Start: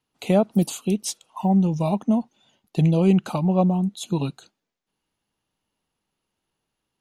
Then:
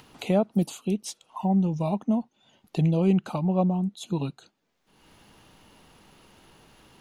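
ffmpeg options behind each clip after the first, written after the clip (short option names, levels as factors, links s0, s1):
-af "highshelf=f=5100:g=-6.5,acompressor=mode=upward:threshold=0.0447:ratio=2.5,volume=0.631"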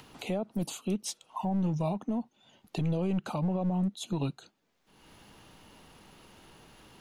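-filter_complex "[0:a]acrossover=split=270|2800[s0][s1][s2];[s0]aeval=exprs='clip(val(0),-1,0.0376)':c=same[s3];[s3][s1][s2]amix=inputs=3:normalize=0,alimiter=limit=0.0708:level=0:latency=1:release=88"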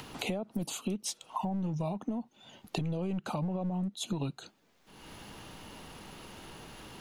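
-af "acompressor=threshold=0.0126:ratio=8,volume=2.24"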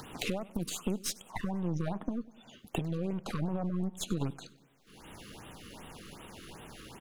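-af "aeval=exprs='0.15*(cos(1*acos(clip(val(0)/0.15,-1,1)))-cos(1*PI/2))+0.0266*(cos(4*acos(clip(val(0)/0.15,-1,1)))-cos(4*PI/2))+0.0376*(cos(6*acos(clip(val(0)/0.15,-1,1)))-cos(6*PI/2))':c=same,aecho=1:1:98|196|294|392|490:0.0891|0.0517|0.03|0.0174|0.0101,afftfilt=real='re*(1-between(b*sr/1024,710*pow(5500/710,0.5+0.5*sin(2*PI*2.6*pts/sr))/1.41,710*pow(5500/710,0.5+0.5*sin(2*PI*2.6*pts/sr))*1.41))':imag='im*(1-between(b*sr/1024,710*pow(5500/710,0.5+0.5*sin(2*PI*2.6*pts/sr))/1.41,710*pow(5500/710,0.5+0.5*sin(2*PI*2.6*pts/sr))*1.41))':win_size=1024:overlap=0.75"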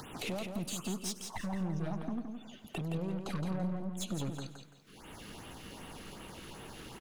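-af "asoftclip=type=tanh:threshold=0.0299,aecho=1:1:168|336|504|672:0.501|0.14|0.0393|0.011"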